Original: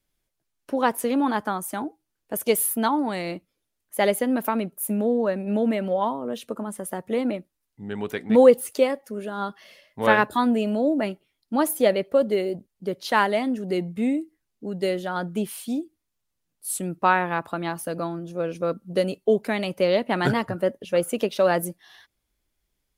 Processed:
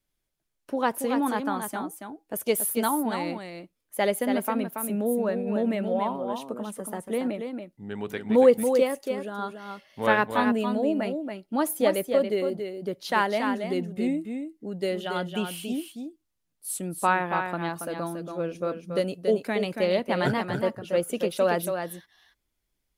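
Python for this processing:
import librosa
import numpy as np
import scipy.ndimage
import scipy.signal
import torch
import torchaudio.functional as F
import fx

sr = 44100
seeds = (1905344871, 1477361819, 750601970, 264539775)

y = fx.peak_eq(x, sr, hz=2900.0, db=14.0, octaves=0.44, at=(15.0, 15.64))
y = y + 10.0 ** (-6.5 / 20.0) * np.pad(y, (int(280 * sr / 1000.0), 0))[:len(y)]
y = F.gain(torch.from_numpy(y), -3.5).numpy()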